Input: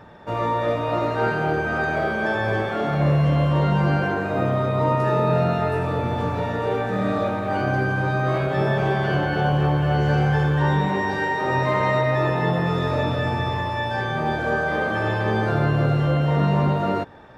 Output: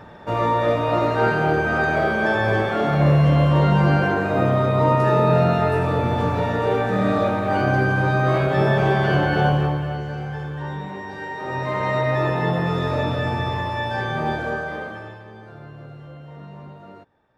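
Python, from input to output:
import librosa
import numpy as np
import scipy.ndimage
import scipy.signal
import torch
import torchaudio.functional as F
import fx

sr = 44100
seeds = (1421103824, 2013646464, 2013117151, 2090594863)

y = fx.gain(x, sr, db=fx.line((9.46, 3.0), (10.1, -10.0), (11.07, -10.0), (12.09, 0.0), (14.3, 0.0), (14.87, -8.5), (15.28, -20.0)))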